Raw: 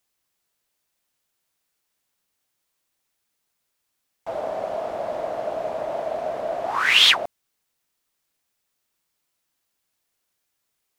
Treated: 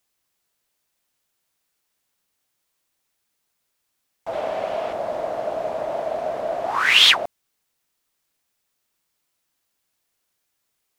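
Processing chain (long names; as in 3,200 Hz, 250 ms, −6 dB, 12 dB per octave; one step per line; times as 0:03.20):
0:04.33–0:04.93: parametric band 2,700 Hz +8 dB 1.4 octaves
level +1.5 dB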